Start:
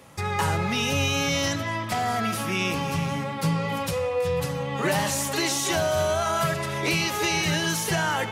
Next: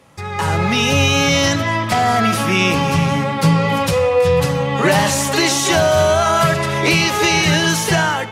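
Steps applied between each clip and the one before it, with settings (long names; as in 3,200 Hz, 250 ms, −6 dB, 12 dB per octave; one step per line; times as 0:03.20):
automatic gain control gain up to 12 dB
high-shelf EQ 11,000 Hz −9.5 dB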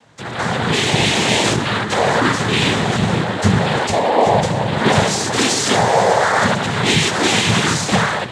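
cochlear-implant simulation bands 6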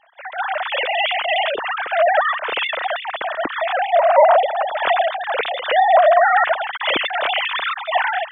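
three sine waves on the formant tracks
level −2 dB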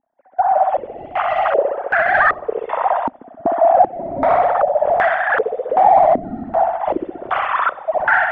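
hard clipping −16.5 dBFS, distortion −8 dB
on a send: flutter between parallel walls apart 11 metres, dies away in 0.95 s
on the sum: low-pass on a step sequencer 2.6 Hz 260–1,600 Hz
level −1 dB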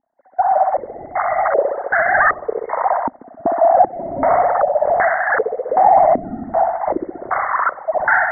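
linear-phase brick-wall low-pass 2,200 Hz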